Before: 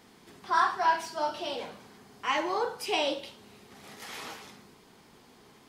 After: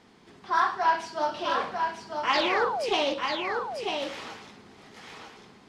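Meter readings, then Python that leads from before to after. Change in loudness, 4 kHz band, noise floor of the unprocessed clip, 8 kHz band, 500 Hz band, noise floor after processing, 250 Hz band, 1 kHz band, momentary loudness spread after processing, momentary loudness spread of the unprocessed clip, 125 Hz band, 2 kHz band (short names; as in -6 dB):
+2.5 dB, +4.0 dB, -58 dBFS, -1.0 dB, +4.5 dB, -55 dBFS, +4.0 dB, +3.0 dB, 19 LU, 18 LU, +4.0 dB, +4.0 dB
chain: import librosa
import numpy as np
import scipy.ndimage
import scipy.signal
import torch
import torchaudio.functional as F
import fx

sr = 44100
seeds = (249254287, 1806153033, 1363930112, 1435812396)

p1 = fx.rider(x, sr, range_db=10, speed_s=2.0)
p2 = x + (p1 * librosa.db_to_amplitude(0.0))
p3 = fx.spec_paint(p2, sr, seeds[0], shape='fall', start_s=2.33, length_s=0.61, low_hz=350.0, high_hz=5100.0, level_db=-26.0)
p4 = fx.air_absorb(p3, sr, metres=65.0)
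p5 = p4 + fx.echo_single(p4, sr, ms=945, db=-5.0, dry=0)
p6 = fx.doppler_dist(p5, sr, depth_ms=0.17)
y = p6 * librosa.db_to_amplitude(-3.5)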